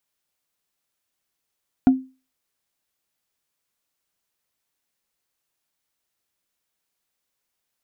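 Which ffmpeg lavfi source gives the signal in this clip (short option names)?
-f lavfi -i "aevalsrc='0.447*pow(10,-3*t/0.31)*sin(2*PI*261*t)+0.119*pow(10,-3*t/0.092)*sin(2*PI*719.6*t)+0.0316*pow(10,-3*t/0.041)*sin(2*PI*1410.4*t)+0.00841*pow(10,-3*t/0.022)*sin(2*PI*2331.5*t)+0.00224*pow(10,-3*t/0.014)*sin(2*PI*3481.7*t)':d=0.45:s=44100"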